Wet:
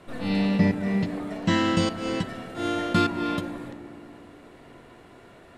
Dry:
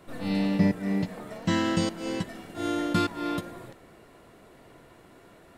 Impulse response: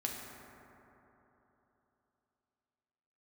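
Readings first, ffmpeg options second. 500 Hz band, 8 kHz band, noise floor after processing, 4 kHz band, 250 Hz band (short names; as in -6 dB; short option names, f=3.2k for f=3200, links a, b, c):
+3.0 dB, 0.0 dB, -50 dBFS, +3.5 dB, +2.5 dB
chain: -filter_complex "[0:a]lowpass=11k,equalizer=f=3.2k:w=0.91:g=3.5,asplit=2[a][b];[1:a]atrim=start_sample=2205,lowpass=3.4k[c];[b][c]afir=irnorm=-1:irlink=0,volume=-7dB[d];[a][d]amix=inputs=2:normalize=0"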